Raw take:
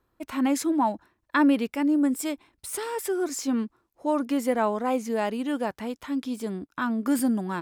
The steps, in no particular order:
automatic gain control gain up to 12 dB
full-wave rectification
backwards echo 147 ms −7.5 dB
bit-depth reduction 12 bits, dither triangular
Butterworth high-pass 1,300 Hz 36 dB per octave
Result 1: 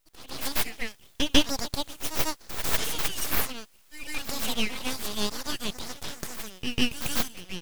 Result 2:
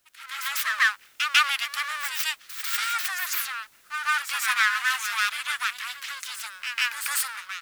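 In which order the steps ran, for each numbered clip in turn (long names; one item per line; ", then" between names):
bit-depth reduction, then Butterworth high-pass, then automatic gain control, then backwards echo, then full-wave rectification
full-wave rectification, then Butterworth high-pass, then bit-depth reduction, then automatic gain control, then backwards echo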